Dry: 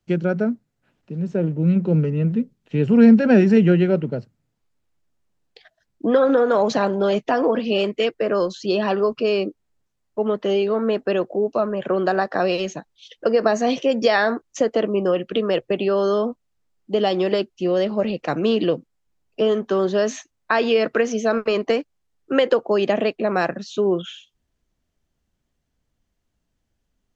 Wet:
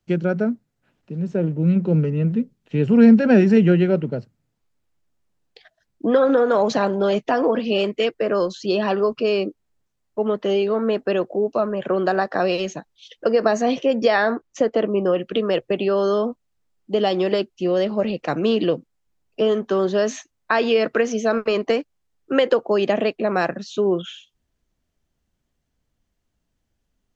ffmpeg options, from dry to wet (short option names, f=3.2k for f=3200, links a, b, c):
-filter_complex "[0:a]asettb=1/sr,asplit=3[a][b][c];[a]atrim=end=13.624[d];[b]atrim=start=13.62:end=15.18,asetpts=PTS-STARTPTS,afade=t=in:d=0.004:c=qsin,afade=t=out:st=1.556:d=0.004:c=qsin,aemphasis=mode=reproduction:type=cd[e];[c]atrim=start=15.176[f];[d][e]acrossfade=d=0.004:c1=hsin:c2=qsin[g];[g][f]acrossfade=d=0.004:c1=qsin:c2=hsin"